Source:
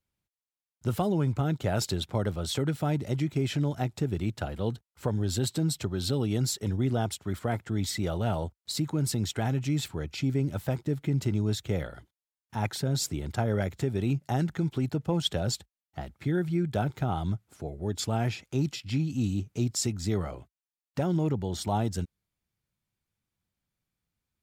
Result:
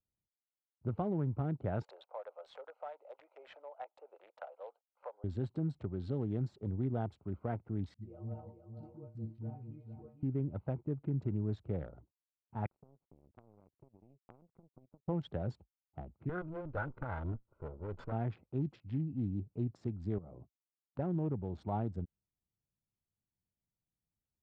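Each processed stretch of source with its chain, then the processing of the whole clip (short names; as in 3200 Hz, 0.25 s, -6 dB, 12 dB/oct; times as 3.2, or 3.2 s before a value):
1.83–5.24 Chebyshev high-pass 520 Hz, order 5 + three-band squash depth 40%
7.94–10.23 metallic resonator 110 Hz, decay 0.32 s, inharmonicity 0.008 + dispersion highs, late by 76 ms, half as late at 370 Hz + echo 0.455 s -7.5 dB
12.66–15.08 LPF 3300 Hz + compressor 10:1, threshold -34 dBFS + power-law curve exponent 3
16.29–18.12 minimum comb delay 2 ms + bell 1400 Hz +11.5 dB 0.46 oct
20.18–20.99 HPF 110 Hz + low shelf 380 Hz +8 dB + compressor 10:1, threshold -38 dBFS
whole clip: Wiener smoothing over 25 samples; de-esser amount 70%; LPF 1500 Hz 12 dB/oct; gain -7.5 dB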